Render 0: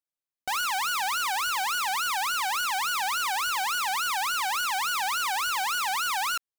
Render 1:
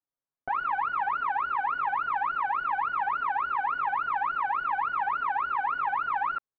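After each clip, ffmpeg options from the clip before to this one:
ffmpeg -i in.wav -af "lowpass=frequency=1500:width=0.5412,lowpass=frequency=1500:width=1.3066,aecho=1:1:7.3:0.93" out.wav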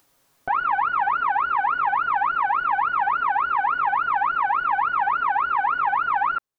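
ffmpeg -i in.wav -af "acompressor=mode=upward:threshold=-50dB:ratio=2.5,volume=6.5dB" out.wav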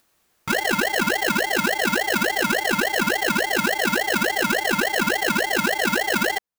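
ffmpeg -i in.wav -filter_complex "[0:a]asplit=2[link_01][link_02];[link_02]acrusher=bits=4:dc=4:mix=0:aa=0.000001,volume=-10.5dB[link_03];[link_01][link_03]amix=inputs=2:normalize=0,aeval=exprs='val(0)*sgn(sin(2*PI*600*n/s))':channel_layout=same,volume=-2dB" out.wav

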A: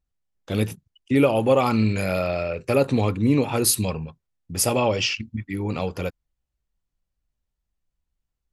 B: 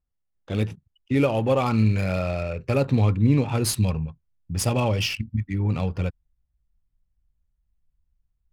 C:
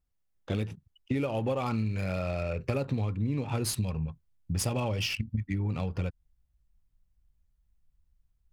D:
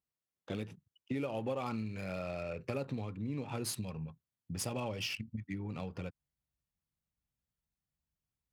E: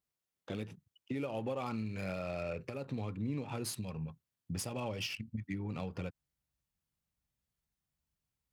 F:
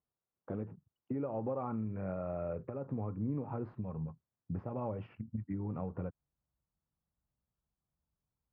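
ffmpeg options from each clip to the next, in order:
ffmpeg -i in.wav -af "adynamicsmooth=sensitivity=6:basefreq=3000,asubboost=boost=3.5:cutoff=190,volume=-2.5dB" out.wav
ffmpeg -i in.wav -af "acompressor=threshold=-28dB:ratio=10,volume=1.5dB" out.wav
ffmpeg -i in.wav -af "highpass=140,volume=-6dB" out.wav
ffmpeg -i in.wav -af "alimiter=level_in=6dB:limit=-24dB:level=0:latency=1:release=379,volume=-6dB,volume=2dB" out.wav
ffmpeg -i in.wav -af "lowpass=frequency=1300:width=0.5412,lowpass=frequency=1300:width=1.3066,volume=1dB" out.wav

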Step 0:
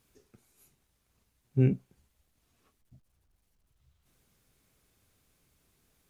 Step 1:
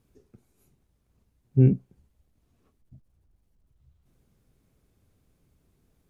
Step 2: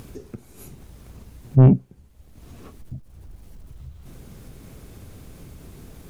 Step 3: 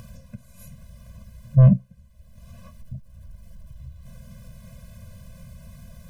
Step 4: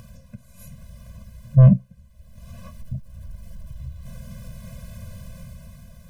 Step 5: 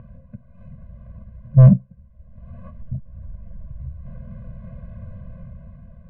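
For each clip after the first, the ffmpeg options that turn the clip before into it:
ffmpeg -i in.wav -af "tiltshelf=frequency=760:gain=7" out.wav
ffmpeg -i in.wav -filter_complex "[0:a]asplit=2[link_01][link_02];[link_02]acompressor=mode=upward:threshold=-31dB:ratio=2.5,volume=2dB[link_03];[link_01][link_03]amix=inputs=2:normalize=0,asoftclip=type=tanh:threshold=-9dB,volume=3dB" out.wav
ffmpeg -i in.wav -af "afftfilt=real='re*eq(mod(floor(b*sr/1024/240),2),0)':imag='im*eq(mod(floor(b*sr/1024/240),2),0)':win_size=1024:overlap=0.75" out.wav
ffmpeg -i in.wav -af "dynaudnorm=framelen=110:gausssize=13:maxgain=7dB,volume=-1.5dB" out.wav
ffmpeg -i in.wav -af "adynamicsmooth=sensitivity=2.5:basefreq=1400,lowpass=2300,volume=2dB" out.wav

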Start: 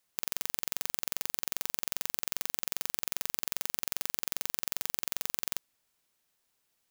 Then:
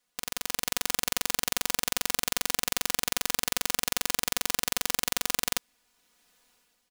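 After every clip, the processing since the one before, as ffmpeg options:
ffmpeg -i in.wav -af "highshelf=frequency=11000:gain=-9.5,aecho=1:1:4.1:0.88,dynaudnorm=framelen=160:gausssize=7:maxgain=13dB" out.wav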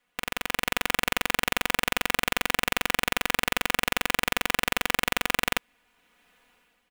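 ffmpeg -i in.wav -af "highshelf=frequency=3600:width_type=q:width=1.5:gain=-10,volume=6dB" out.wav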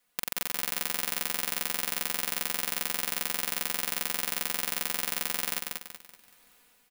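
ffmpeg -i in.wav -af "acompressor=threshold=-28dB:ratio=3,aexciter=amount=3:drive=5.4:freq=4000,aecho=1:1:190|380|570|760|950:0.668|0.254|0.0965|0.0367|0.0139,volume=-3dB" out.wav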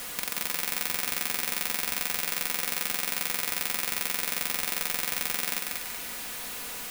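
ffmpeg -i in.wav -af "aeval=exprs='val(0)+0.5*0.0266*sgn(val(0))':channel_layout=same" out.wav

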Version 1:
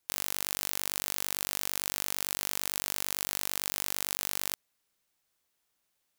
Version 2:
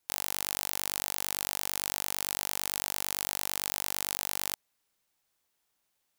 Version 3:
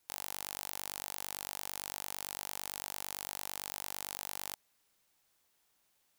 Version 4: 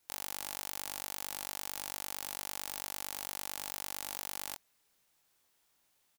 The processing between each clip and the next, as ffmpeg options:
ffmpeg -i in.wav -af "equalizer=frequency=840:width=3.4:gain=3" out.wav
ffmpeg -i in.wav -af "aeval=exprs='clip(val(0),-1,0.15)':channel_layout=same,volume=3.5dB" out.wav
ffmpeg -i in.wav -filter_complex "[0:a]asplit=2[link_01][link_02];[link_02]adelay=24,volume=-6.5dB[link_03];[link_01][link_03]amix=inputs=2:normalize=0" out.wav

